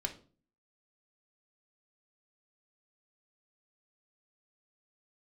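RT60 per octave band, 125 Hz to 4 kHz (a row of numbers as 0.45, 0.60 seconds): 0.60, 0.60, 0.45, 0.35, 0.30, 0.30 seconds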